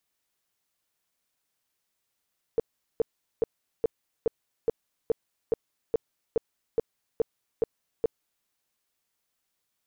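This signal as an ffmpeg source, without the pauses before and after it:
ffmpeg -f lavfi -i "aevalsrc='0.112*sin(2*PI*457*mod(t,0.42))*lt(mod(t,0.42),8/457)':duration=5.88:sample_rate=44100" out.wav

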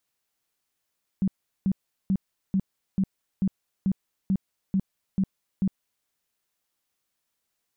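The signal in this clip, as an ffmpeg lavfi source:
ffmpeg -f lavfi -i "aevalsrc='0.106*sin(2*PI*192*mod(t,0.44))*lt(mod(t,0.44),11/192)':duration=4.84:sample_rate=44100" out.wav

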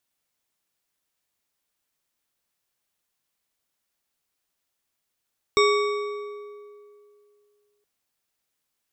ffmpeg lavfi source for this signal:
ffmpeg -f lavfi -i "aevalsrc='0.15*pow(10,-3*t/2.49)*sin(2*PI*414*t)+0.106*pow(10,-3*t/1.837)*sin(2*PI*1141.4*t)+0.075*pow(10,-3*t/1.501)*sin(2*PI*2237.3*t)+0.0531*pow(10,-3*t/1.291)*sin(2*PI*3698.3*t)+0.0376*pow(10,-3*t/1.145)*sin(2*PI*5522.8*t)+0.0266*pow(10,-3*t/1.035)*sin(2*PI*7717*t)':duration=2.27:sample_rate=44100" out.wav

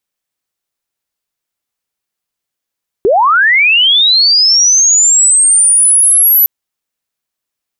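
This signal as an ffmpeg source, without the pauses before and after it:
ffmpeg -f lavfi -i "aevalsrc='pow(10,(-5.5+1*t/3.41)/20)*sin(2*PI*(360*t+11640*t*t/(2*3.41)))':duration=3.41:sample_rate=44100" out.wav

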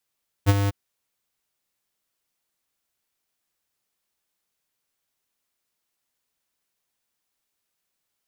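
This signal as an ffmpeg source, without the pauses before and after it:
ffmpeg -f lavfi -i "aevalsrc='0.211*(2*lt(mod(100*t,1),0.5)-1)':duration=0.251:sample_rate=44100,afade=type=in:duration=0.034,afade=type=out:start_time=0.034:duration=0.034:silence=0.376,afade=type=out:start_time=0.23:duration=0.021" out.wav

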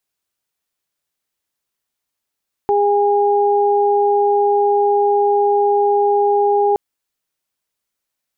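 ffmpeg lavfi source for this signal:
ffmpeg -f lavfi -i "aevalsrc='0.2*sin(2*PI*408*t)+0.178*sin(2*PI*816*t)':duration=4.07:sample_rate=44100" out.wav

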